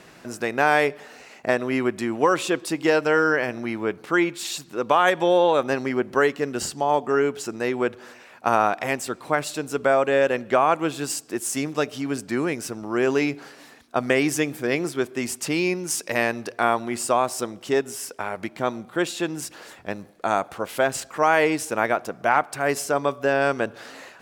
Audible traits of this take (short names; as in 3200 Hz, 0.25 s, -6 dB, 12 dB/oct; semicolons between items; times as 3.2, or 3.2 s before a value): noise floor -49 dBFS; spectral tilt -4.0 dB/oct